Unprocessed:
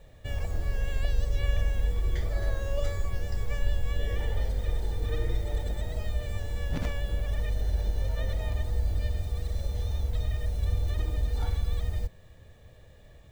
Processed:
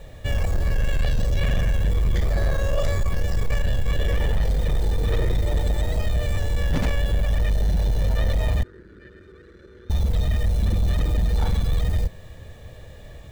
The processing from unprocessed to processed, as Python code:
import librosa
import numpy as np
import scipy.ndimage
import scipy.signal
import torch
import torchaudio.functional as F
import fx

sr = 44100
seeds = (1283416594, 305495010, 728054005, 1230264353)

p1 = fx.fold_sine(x, sr, drive_db=12, ceiling_db=-13.0)
p2 = x + (p1 * librosa.db_to_amplitude(-7.5))
y = fx.double_bandpass(p2, sr, hz=740.0, octaves=2.0, at=(8.63, 9.9))